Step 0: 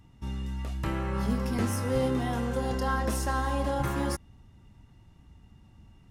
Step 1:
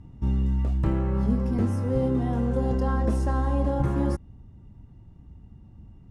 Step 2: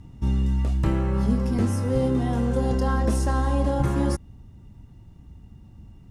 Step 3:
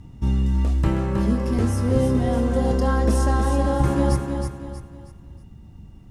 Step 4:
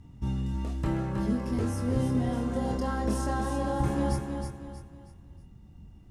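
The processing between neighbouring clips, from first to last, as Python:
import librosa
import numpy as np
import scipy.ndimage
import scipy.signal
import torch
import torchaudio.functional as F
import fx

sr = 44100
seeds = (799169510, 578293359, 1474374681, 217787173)

y1 = scipy.signal.sosfilt(scipy.signal.butter(4, 11000.0, 'lowpass', fs=sr, output='sos'), x)
y1 = fx.tilt_shelf(y1, sr, db=9.0, hz=970.0)
y1 = fx.rider(y1, sr, range_db=4, speed_s=0.5)
y1 = F.gain(torch.from_numpy(y1), -2.0).numpy()
y2 = fx.high_shelf(y1, sr, hz=2500.0, db=11.0)
y2 = F.gain(torch.from_numpy(y2), 1.5).numpy()
y3 = fx.echo_feedback(y2, sr, ms=318, feedback_pct=37, wet_db=-6)
y3 = F.gain(torch.from_numpy(y3), 2.0).numpy()
y4 = fx.doubler(y3, sr, ms=24.0, db=-5.5)
y4 = F.gain(torch.from_numpy(y4), -8.0).numpy()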